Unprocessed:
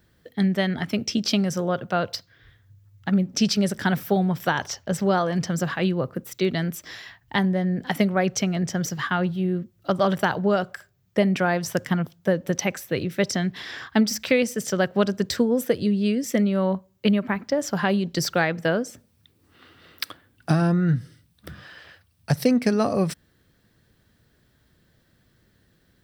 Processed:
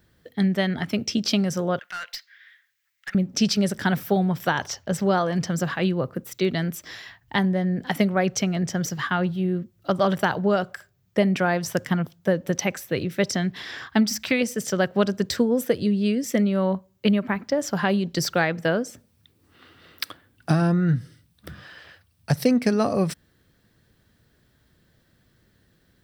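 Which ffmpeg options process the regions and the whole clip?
ffmpeg -i in.wav -filter_complex "[0:a]asettb=1/sr,asplit=3[link_01][link_02][link_03];[link_01]atrim=end=1.794[link_04];[link_02]atrim=start=1.79:end=3.15,asetpts=PTS-STARTPTS,afade=type=in:duration=0.004:curve=qsin,afade=type=out:start_time=1.356:duration=0.004:curve=qsin,highpass=frequency=1900:width_type=q:width=3,aeval=exprs='(tanh(25.1*val(0)+0.1)-tanh(0.1))/25.1':channel_layout=same[link_05];[link_03]atrim=start=3.146[link_06];[link_04][link_05]acrossfade=duration=0.004:curve1=hsin:curve2=qsin[link_07];[link_07][link_06]acrossfade=duration=0.004:curve1=qsin:curve2=hsin,asettb=1/sr,asplit=3[link_08][link_09][link_10];[link_08]atrim=end=13.974[link_11];[link_09]atrim=start=13.97:end=14.41,asetpts=PTS-STARTPTS,afade=type=in:duration=0.004:curve=qsin,afade=type=out:start_time=0.436:duration=0.004:curve=qsin,equalizer=frequency=470:width_type=o:width=0.22:gain=-11.5,bandreject=frequency=570:width=8.2[link_12];[link_10]atrim=start=14.406[link_13];[link_11][link_12]acrossfade=duration=0.004:curve1=hsin:curve2=qsin[link_14];[link_14][link_13]acrossfade=duration=0.004:curve1=qsin:curve2=hsin" out.wav

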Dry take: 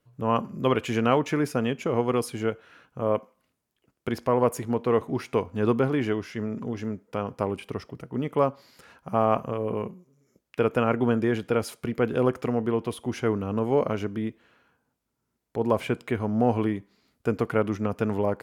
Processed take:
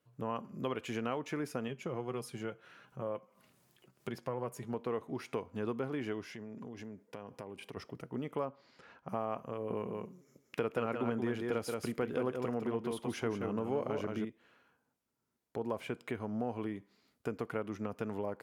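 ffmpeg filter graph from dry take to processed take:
ffmpeg -i in.wav -filter_complex "[0:a]asettb=1/sr,asplit=3[link_01][link_02][link_03];[link_01]atrim=end=1.684[link_04];[link_02]atrim=start=1.68:end=4.74,asetpts=PTS-STARTPTS,afade=type=in:duration=0.004:curve=qsin,afade=type=out:start_time=3.056:duration=0.004:curve=qsin,equalizer=frequency=130:width_type=o:width=0.39:gain=10,acompressor=mode=upward:threshold=-40dB:ratio=2.5:attack=3.2:release=140:knee=2.83:detection=peak,flanger=delay=4.8:depth=1.1:regen=53:speed=1.7:shape=triangular[link_05];[link_03]atrim=start=4.736[link_06];[link_04][link_05]acrossfade=duration=0.004:curve1=hsin:curve2=qsin[link_07];[link_07][link_06]acrossfade=duration=0.004:curve1=qsin:curve2=hsin,asettb=1/sr,asplit=3[link_08][link_09][link_10];[link_08]atrim=end=6.254[link_11];[link_09]atrim=start=6.25:end=7.77,asetpts=PTS-STARTPTS,afade=type=in:duration=0.004:curve=qsin,afade=type=out:start_time=1.516:duration=0.004:curve=qsin,highpass=61,bandreject=frequency=1300:width=6.5,acompressor=threshold=-37dB:ratio=4:attack=3.2:release=140:knee=1:detection=peak[link_12];[link_10]atrim=start=7.766[link_13];[link_11][link_12]acrossfade=duration=0.004:curve1=hsin:curve2=qsin[link_14];[link_14][link_13]acrossfade=duration=0.004:curve1=qsin:curve2=hsin,asettb=1/sr,asplit=3[link_15][link_16][link_17];[link_15]atrim=end=8.454[link_18];[link_16]atrim=start=8.45:end=9.09,asetpts=PTS-STARTPTS,afade=type=in:duration=0.004:curve=qsin,afade=type=out:start_time=0.636:duration=0.004:curve=qsin,lowpass=7100,aemphasis=mode=reproduction:type=50fm[link_19];[link_17]atrim=start=9.086[link_20];[link_18][link_19]acrossfade=duration=0.004:curve1=hsin:curve2=qsin[link_21];[link_21][link_20]acrossfade=duration=0.004:curve1=qsin:curve2=hsin,asettb=1/sr,asplit=3[link_22][link_23][link_24];[link_22]atrim=end=9.704[link_25];[link_23]atrim=start=9.7:end=14.25,asetpts=PTS-STARTPTS,afade=type=in:duration=0.004:curve=qsin,afade=type=out:start_time=4.546:duration=0.004:curve=qsin,acontrast=31,aecho=1:1:177:0.501,atrim=end_sample=200655[link_26];[link_24]atrim=start=14.246[link_27];[link_25][link_26]acrossfade=duration=0.004:curve1=hsin:curve2=qsin[link_28];[link_28][link_27]acrossfade=duration=0.004:curve1=qsin:curve2=hsin,highpass=frequency=140:poles=1,acompressor=threshold=-32dB:ratio=2.5,volume=-4.5dB" out.wav

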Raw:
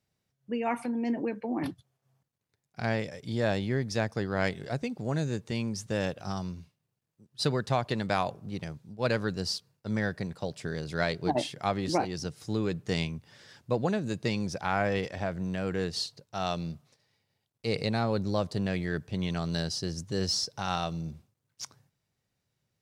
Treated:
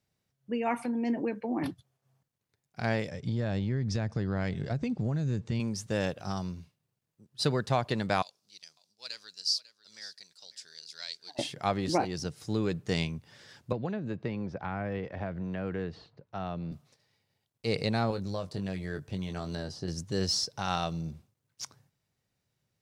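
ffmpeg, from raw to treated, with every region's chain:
ffmpeg -i in.wav -filter_complex "[0:a]asettb=1/sr,asplit=3[link_01][link_02][link_03];[link_01]atrim=end=3.114[link_04];[link_02]atrim=start=3.11:end=5.6,asetpts=PTS-STARTPTS,afade=type=in:duration=0.004:curve=qsin,afade=type=out:start_time=2.486:duration=0.004:curve=qsin,bass=frequency=250:gain=10,treble=frequency=4000:gain=-2,acompressor=threshold=-26dB:ratio=10:attack=3.2:release=140:knee=1:detection=peak,lowpass=frequency=7900:width=0.5412,lowpass=frequency=7900:width=1.3066[link_05];[link_03]atrim=start=5.596[link_06];[link_04][link_05]acrossfade=duration=0.004:curve1=hsin:curve2=qsin[link_07];[link_07][link_06]acrossfade=duration=0.004:curve1=qsin:curve2=hsin,asettb=1/sr,asplit=3[link_08][link_09][link_10];[link_08]atrim=end=8.224[link_11];[link_09]atrim=start=8.22:end=11.39,asetpts=PTS-STARTPTS,afade=type=in:duration=0.004:curve=qsin,afade=type=out:start_time=3.166:duration=0.004:curve=qsin,bandpass=frequency=4900:width_type=q:width=2.7,aemphasis=mode=production:type=50fm,aecho=1:1:547:0.15,atrim=end_sample=139797[link_12];[link_10]atrim=start=11.386[link_13];[link_11][link_12]acrossfade=duration=0.004:curve1=hsin:curve2=qsin[link_14];[link_14][link_13]acrossfade=duration=0.004:curve1=qsin:curve2=hsin,asettb=1/sr,asplit=3[link_15][link_16][link_17];[link_15]atrim=end=13.724[link_18];[link_16]atrim=start=13.72:end=16.72,asetpts=PTS-STARTPTS,afade=type=in:duration=0.004:curve=qsin,afade=type=out:start_time=2.996:duration=0.004:curve=qsin,acrossover=split=310|2100[link_19][link_20][link_21];[link_19]acompressor=threshold=-34dB:ratio=4[link_22];[link_20]acompressor=threshold=-36dB:ratio=4[link_23];[link_21]acompressor=threshold=-50dB:ratio=4[link_24];[link_22][link_23][link_24]amix=inputs=3:normalize=0,lowpass=2700[link_25];[link_17]atrim=start=16.716[link_26];[link_18][link_25]acrossfade=duration=0.004:curve1=hsin:curve2=qsin[link_27];[link_27][link_26]acrossfade=duration=0.004:curve1=qsin:curve2=hsin,asettb=1/sr,asplit=3[link_28][link_29][link_30];[link_28]atrim=end=18.104[link_31];[link_29]atrim=start=18.1:end=19.88,asetpts=PTS-STARTPTS,afade=type=in:duration=0.004:curve=qsin,afade=type=out:start_time=1.776:duration=0.004:curve=qsin,asplit=2[link_32][link_33];[link_33]adelay=21,volume=-7.5dB[link_34];[link_32][link_34]amix=inputs=2:normalize=0,atrim=end_sample=78498,acrossover=split=1700|5500[link_35][link_36][link_37];[link_35]acompressor=threshold=-32dB:ratio=4[link_38];[link_36]acompressor=threshold=-50dB:ratio=4[link_39];[link_37]acompressor=threshold=-57dB:ratio=4[link_40];[link_38][link_39][link_40]amix=inputs=3:normalize=0[link_41];[link_30]atrim=start=19.876[link_42];[link_31][link_41]acrossfade=duration=0.004:curve1=hsin:curve2=qsin[link_43];[link_43][link_42]acrossfade=duration=0.004:curve1=qsin:curve2=hsin" out.wav

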